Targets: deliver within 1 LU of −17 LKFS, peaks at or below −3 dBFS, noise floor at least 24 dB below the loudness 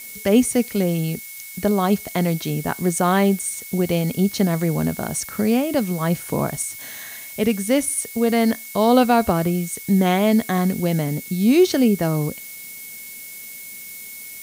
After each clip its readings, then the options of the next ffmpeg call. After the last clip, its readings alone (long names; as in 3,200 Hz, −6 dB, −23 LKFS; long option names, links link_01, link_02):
interfering tone 2,200 Hz; level of the tone −41 dBFS; background noise floor −37 dBFS; target noise floor −45 dBFS; integrated loudness −20.5 LKFS; sample peak −2.5 dBFS; target loudness −17.0 LKFS
→ -af "bandreject=frequency=2200:width=30"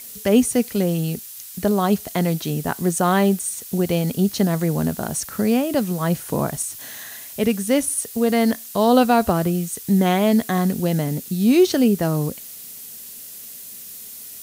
interfering tone none found; background noise floor −38 dBFS; target noise floor −45 dBFS
→ -af "afftdn=noise_reduction=7:noise_floor=-38"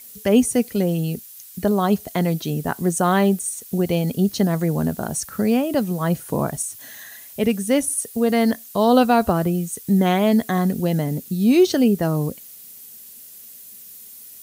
background noise floor −42 dBFS; target noise floor −45 dBFS
→ -af "afftdn=noise_reduction=6:noise_floor=-42"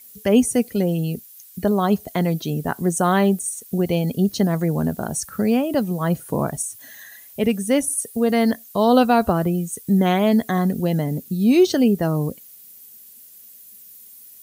background noise floor −45 dBFS; integrated loudness −20.5 LKFS; sample peak −2.5 dBFS; target loudness −17.0 LKFS
→ -af "volume=3.5dB,alimiter=limit=-3dB:level=0:latency=1"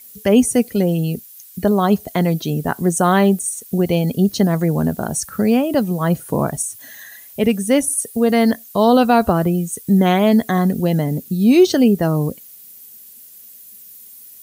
integrated loudness −17.0 LKFS; sample peak −3.0 dBFS; background noise floor −42 dBFS